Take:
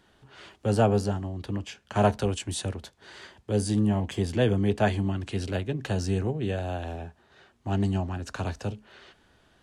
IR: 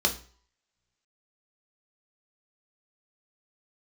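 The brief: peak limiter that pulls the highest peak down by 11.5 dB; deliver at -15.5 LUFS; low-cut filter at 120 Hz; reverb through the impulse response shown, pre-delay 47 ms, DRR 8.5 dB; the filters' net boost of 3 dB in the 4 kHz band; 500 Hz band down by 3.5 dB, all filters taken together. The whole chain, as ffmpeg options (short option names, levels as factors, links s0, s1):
-filter_complex "[0:a]highpass=120,equalizer=f=500:t=o:g=-4.5,equalizer=f=4000:t=o:g=4,alimiter=limit=0.0668:level=0:latency=1,asplit=2[s0][s1];[1:a]atrim=start_sample=2205,adelay=47[s2];[s1][s2]afir=irnorm=-1:irlink=0,volume=0.112[s3];[s0][s3]amix=inputs=2:normalize=0,volume=7.94"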